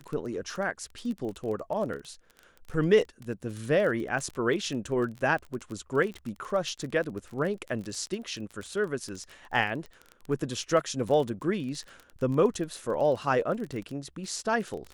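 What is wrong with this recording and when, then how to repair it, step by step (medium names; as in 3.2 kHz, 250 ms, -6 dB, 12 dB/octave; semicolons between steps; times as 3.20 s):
crackle 21 per s -33 dBFS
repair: de-click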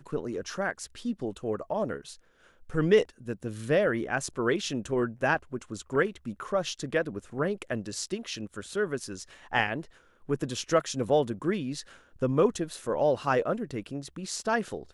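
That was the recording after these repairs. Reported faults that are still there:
nothing left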